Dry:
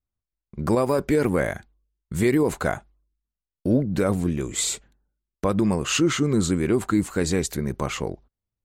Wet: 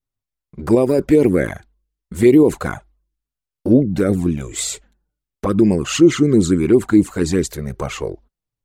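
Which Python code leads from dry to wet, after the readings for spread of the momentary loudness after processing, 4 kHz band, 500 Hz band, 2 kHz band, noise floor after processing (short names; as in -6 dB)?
15 LU, +1.5 dB, +7.5 dB, +1.5 dB, under -85 dBFS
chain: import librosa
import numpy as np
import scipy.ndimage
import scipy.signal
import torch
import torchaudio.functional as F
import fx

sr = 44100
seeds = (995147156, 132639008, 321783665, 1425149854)

y = fx.env_flanger(x, sr, rest_ms=7.5, full_db=-15.5)
y = fx.dynamic_eq(y, sr, hz=340.0, q=1.3, threshold_db=-35.0, ratio=4.0, max_db=7)
y = F.gain(torch.from_numpy(y), 4.5).numpy()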